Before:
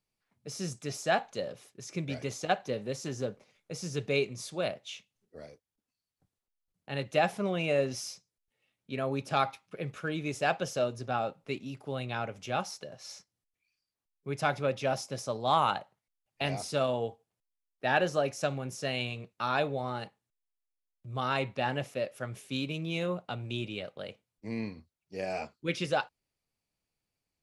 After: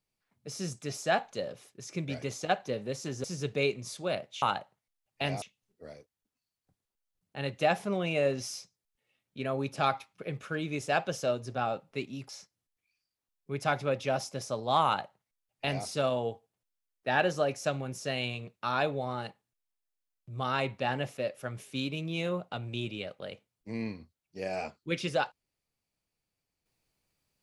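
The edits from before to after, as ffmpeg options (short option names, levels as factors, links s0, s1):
-filter_complex "[0:a]asplit=5[s0][s1][s2][s3][s4];[s0]atrim=end=3.242[s5];[s1]atrim=start=3.768:end=4.952[s6];[s2]atrim=start=15.618:end=16.622[s7];[s3]atrim=start=4.948:end=11.822[s8];[s4]atrim=start=13.058[s9];[s5][s6]acrossfade=d=0.004:c1=hsin:c2=hsin[s10];[s10][s7]acrossfade=d=0.004:c1=hsin:c2=hsin[s11];[s11][s8]acrossfade=d=0.004:c1=hsin:c2=hsin[s12];[s12][s9]acrossfade=d=0.004:c1=hsin:c2=hsin"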